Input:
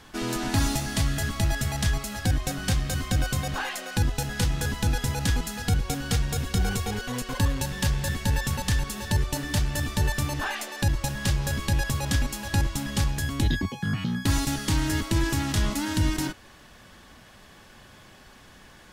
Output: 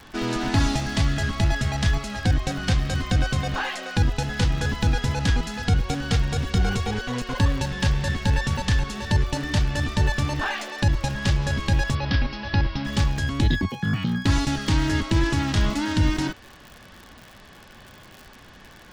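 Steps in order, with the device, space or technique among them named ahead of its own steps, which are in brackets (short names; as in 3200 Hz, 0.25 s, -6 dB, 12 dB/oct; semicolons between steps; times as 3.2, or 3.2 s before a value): lo-fi chain (LPF 5100 Hz 12 dB/oct; wow and flutter 21 cents; crackle 89/s -37 dBFS); 11.95–12.85 elliptic low-pass 5200 Hz, stop band 40 dB; gain +3.5 dB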